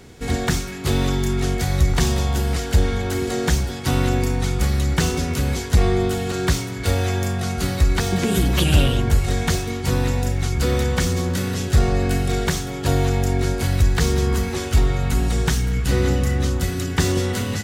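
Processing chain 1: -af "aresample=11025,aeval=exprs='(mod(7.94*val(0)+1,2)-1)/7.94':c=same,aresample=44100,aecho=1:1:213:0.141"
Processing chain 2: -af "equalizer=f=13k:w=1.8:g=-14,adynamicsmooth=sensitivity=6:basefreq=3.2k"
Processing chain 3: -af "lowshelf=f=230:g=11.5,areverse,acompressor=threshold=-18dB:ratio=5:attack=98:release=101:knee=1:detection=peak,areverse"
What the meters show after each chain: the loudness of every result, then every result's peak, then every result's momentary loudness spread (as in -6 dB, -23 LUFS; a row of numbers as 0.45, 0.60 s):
-22.5, -21.5, -18.0 LUFS; -12.0, -4.5, -4.5 dBFS; 2, 5, 2 LU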